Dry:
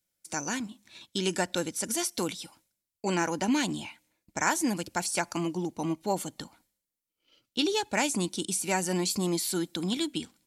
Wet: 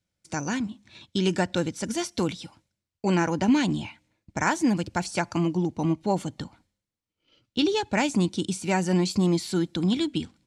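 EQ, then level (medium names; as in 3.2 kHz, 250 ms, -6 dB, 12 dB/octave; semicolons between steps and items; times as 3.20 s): distance through air 83 m; peaking EQ 92 Hz +11.5 dB 2.1 oct; +2.5 dB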